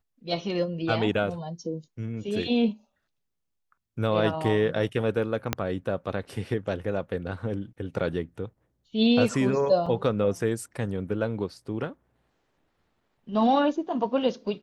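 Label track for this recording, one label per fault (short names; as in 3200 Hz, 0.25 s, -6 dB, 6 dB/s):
5.530000	5.530000	pop -8 dBFS
9.860000	9.860000	gap 4.8 ms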